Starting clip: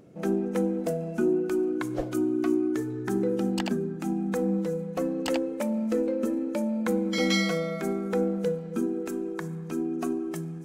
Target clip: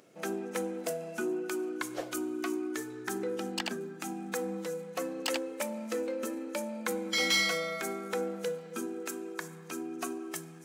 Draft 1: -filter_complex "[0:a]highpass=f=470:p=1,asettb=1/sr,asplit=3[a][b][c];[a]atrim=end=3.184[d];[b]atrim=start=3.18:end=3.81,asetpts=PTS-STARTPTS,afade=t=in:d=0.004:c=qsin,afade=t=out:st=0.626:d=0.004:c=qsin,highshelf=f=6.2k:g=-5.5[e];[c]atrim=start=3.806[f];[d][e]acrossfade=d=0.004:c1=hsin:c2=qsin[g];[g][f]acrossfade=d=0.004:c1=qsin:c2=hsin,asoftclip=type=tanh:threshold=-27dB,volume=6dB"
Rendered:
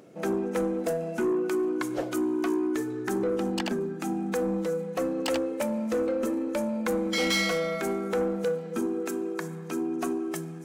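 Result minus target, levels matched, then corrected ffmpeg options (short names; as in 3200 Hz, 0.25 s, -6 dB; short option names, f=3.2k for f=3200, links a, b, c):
2000 Hz band -4.5 dB
-filter_complex "[0:a]highpass=f=1.8k:p=1,asettb=1/sr,asplit=3[a][b][c];[a]atrim=end=3.184[d];[b]atrim=start=3.18:end=3.81,asetpts=PTS-STARTPTS,afade=t=in:d=0.004:c=qsin,afade=t=out:st=0.626:d=0.004:c=qsin,highshelf=f=6.2k:g=-5.5[e];[c]atrim=start=3.806[f];[d][e]acrossfade=d=0.004:c1=hsin:c2=qsin[g];[g][f]acrossfade=d=0.004:c1=qsin:c2=hsin,asoftclip=type=tanh:threshold=-27dB,volume=6dB"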